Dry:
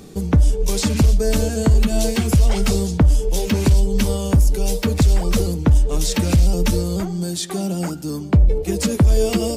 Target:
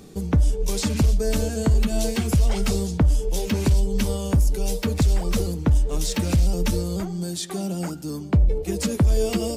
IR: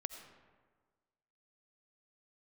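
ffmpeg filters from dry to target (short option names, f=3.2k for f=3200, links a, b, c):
-filter_complex "[0:a]asettb=1/sr,asplit=3[a][b][c];[a]atrim=end=5.034[d];[b]atrim=start=5.03:end=6.62,asetpts=PTS-STARTPTS,afade=t=in:d=0.004:c=qsin,afade=t=out:st=1.586:d=0.004:c=qsin,aeval=exprs='sgn(val(0))*max(abs(val(0))-0.00447,0)':c=same[e];[c]atrim=start=6.616[f];[d][e]acrossfade=d=0.004:c1=hsin:c2=qsin[g];[g][f]acrossfade=d=0.004:c1=qsin:c2=hsin,volume=-4.5dB"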